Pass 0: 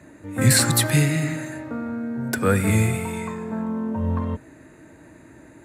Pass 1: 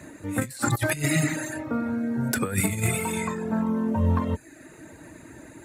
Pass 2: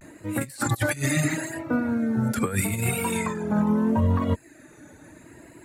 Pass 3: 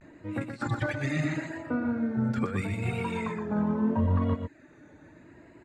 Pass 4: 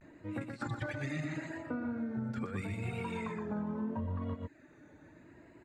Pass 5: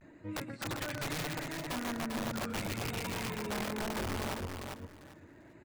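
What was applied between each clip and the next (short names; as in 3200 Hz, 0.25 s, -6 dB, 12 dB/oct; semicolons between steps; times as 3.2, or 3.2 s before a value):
reverb removal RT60 0.68 s; high shelf 3700 Hz +7 dB; negative-ratio compressor -23 dBFS, ratio -0.5
limiter -17.5 dBFS, peak gain reduction 9.5 dB; vibrato 0.77 Hz 87 cents; upward expander 1.5:1, over -37 dBFS; gain +4.5 dB
air absorption 170 m; on a send: echo 0.121 s -6.5 dB; on the sum: gain -5 dB
compressor, threshold -29 dBFS, peak gain reduction 8.5 dB; gain -4.5 dB
wrapped overs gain 31.5 dB; on a send: feedback echo 0.396 s, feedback 20%, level -5 dB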